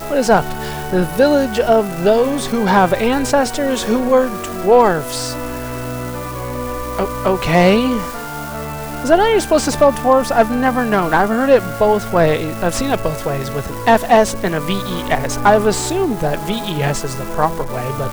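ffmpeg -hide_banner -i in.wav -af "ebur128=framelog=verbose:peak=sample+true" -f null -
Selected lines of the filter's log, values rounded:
Integrated loudness:
  I:         -16.3 LUFS
  Threshold: -26.3 LUFS
Loudness range:
  LRA:         3.9 LU
  Threshold: -36.1 LUFS
  LRA low:   -18.4 LUFS
  LRA high:  -14.5 LUFS
Sample peak:
  Peak:       -2.2 dBFS
True peak:
  Peak:       -2.1 dBFS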